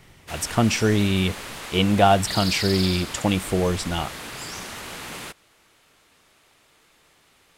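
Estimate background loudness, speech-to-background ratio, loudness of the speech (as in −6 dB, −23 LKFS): −32.0 LKFS, 10.0 dB, −22.0 LKFS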